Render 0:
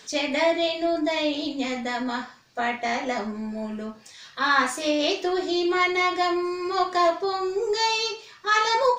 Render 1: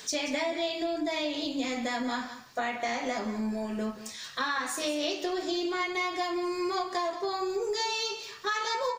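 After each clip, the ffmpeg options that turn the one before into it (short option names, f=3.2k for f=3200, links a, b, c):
-af "highshelf=f=8.6k:g=11.5,acompressor=threshold=-30dB:ratio=6,aecho=1:1:182:0.237,volume=1.5dB"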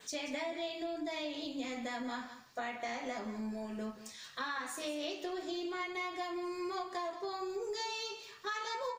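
-af "adynamicequalizer=threshold=0.00282:dfrequency=5300:dqfactor=2:tfrequency=5300:tqfactor=2:attack=5:release=100:ratio=0.375:range=2.5:mode=cutabove:tftype=bell,volume=-8dB"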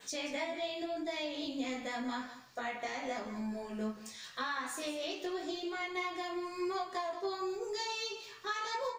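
-af "flanger=delay=15:depth=4.3:speed=0.87,volume=4.5dB"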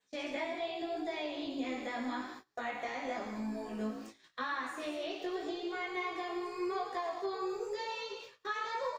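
-filter_complex "[0:a]asplit=4[a][b][c][d];[b]adelay=111,afreqshift=57,volume=-10dB[e];[c]adelay=222,afreqshift=114,volume=-20.2dB[f];[d]adelay=333,afreqshift=171,volume=-30.3dB[g];[a][e][f][g]amix=inputs=4:normalize=0,acrossover=split=3400[h][i];[i]acompressor=threshold=-57dB:ratio=4:attack=1:release=60[j];[h][j]amix=inputs=2:normalize=0,agate=range=-24dB:threshold=-48dB:ratio=16:detection=peak"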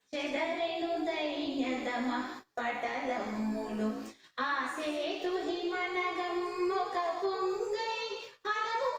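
-af "volume=4.5dB" -ar 48000 -c:a libopus -b:a 48k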